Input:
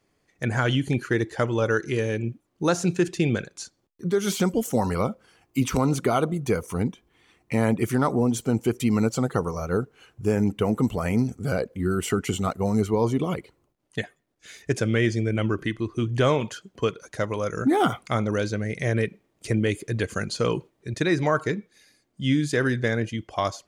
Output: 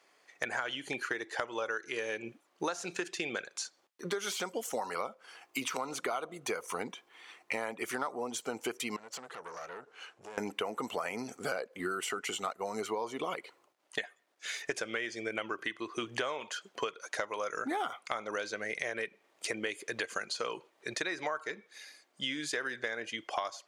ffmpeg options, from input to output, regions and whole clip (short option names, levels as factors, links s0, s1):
-filter_complex "[0:a]asettb=1/sr,asplit=3[s0][s1][s2];[s0]atrim=end=8.964[s3];[s1]atrim=start=8.96:end=10.38,asetpts=PTS-STARTPTS,afade=t=in:d=0.004:c=qsin,afade=t=out:st=1.416:d=0.004:c=qsin,lowpass=9400,acompressor=threshold=0.0158:ratio=10:attack=3.2:release=140:knee=1:detection=peak,aeval=exprs='(tanh(100*val(0)+0.6)-tanh(0.6))/100':c=same[s4];[s2]atrim=start=10.376[s5];[s3][s4]acrossfade=d=0.004:c1=hsin:c2=qsin[s6];[s6][s5]acrossfade=d=0.004:c1=qsin:c2=hsin,highpass=690,acompressor=threshold=0.01:ratio=12,highshelf=f=8700:g=-9,volume=2.66"